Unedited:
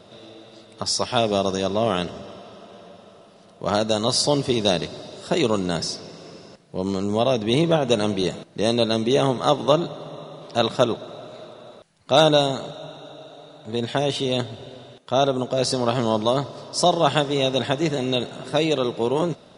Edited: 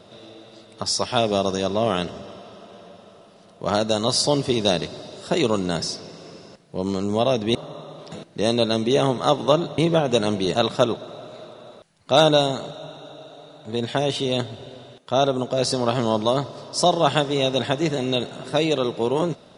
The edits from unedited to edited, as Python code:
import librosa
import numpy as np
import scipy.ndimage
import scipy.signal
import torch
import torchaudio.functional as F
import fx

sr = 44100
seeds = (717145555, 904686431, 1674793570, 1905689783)

y = fx.edit(x, sr, fx.swap(start_s=7.55, length_s=0.77, other_s=9.98, other_length_s=0.57), tone=tone)